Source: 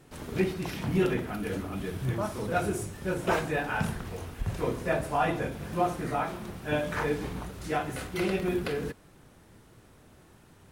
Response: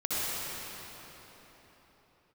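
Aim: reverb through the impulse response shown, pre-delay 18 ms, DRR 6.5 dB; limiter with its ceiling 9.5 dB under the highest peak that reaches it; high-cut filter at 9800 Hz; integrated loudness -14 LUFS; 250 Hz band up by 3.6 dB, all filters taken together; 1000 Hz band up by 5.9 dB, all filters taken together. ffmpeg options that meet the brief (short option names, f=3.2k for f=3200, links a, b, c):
-filter_complex "[0:a]lowpass=9.8k,equalizer=f=250:t=o:g=5,equalizer=f=1k:t=o:g=8,alimiter=limit=-17.5dB:level=0:latency=1,asplit=2[a][b];[1:a]atrim=start_sample=2205,adelay=18[c];[b][c]afir=irnorm=-1:irlink=0,volume=-16.5dB[d];[a][d]amix=inputs=2:normalize=0,volume=15dB"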